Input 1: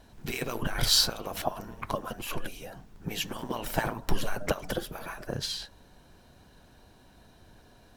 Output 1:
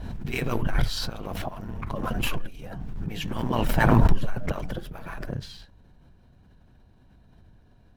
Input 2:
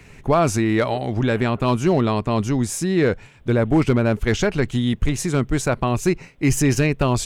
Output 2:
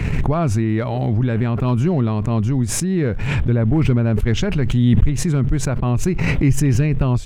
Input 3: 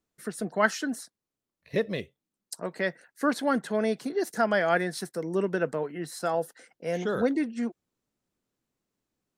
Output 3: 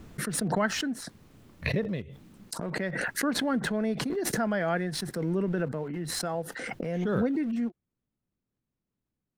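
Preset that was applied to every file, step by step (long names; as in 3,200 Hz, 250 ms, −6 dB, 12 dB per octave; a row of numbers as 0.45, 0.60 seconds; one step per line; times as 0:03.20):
in parallel at −8 dB: centre clipping without the shift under −36 dBFS
on the sum: bass and treble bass +11 dB, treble −9 dB
background raised ahead of every attack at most 21 dB per second
level −9 dB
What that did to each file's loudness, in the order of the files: +3.0, +2.0, −1.0 LU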